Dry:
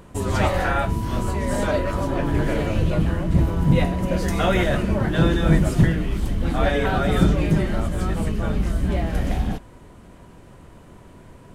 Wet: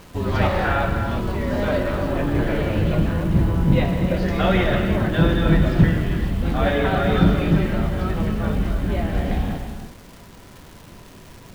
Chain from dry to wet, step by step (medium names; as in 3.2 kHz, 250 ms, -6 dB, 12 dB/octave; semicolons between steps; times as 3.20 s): low-pass 4.5 kHz 24 dB/octave; gated-style reverb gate 380 ms flat, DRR 4.5 dB; word length cut 8-bit, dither none; crackle 280 per s -36 dBFS